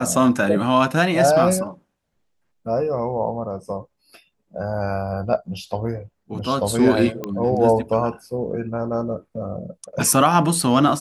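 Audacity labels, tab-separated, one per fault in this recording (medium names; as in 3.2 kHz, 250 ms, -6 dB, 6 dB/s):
7.240000	7.240000	pop -14 dBFS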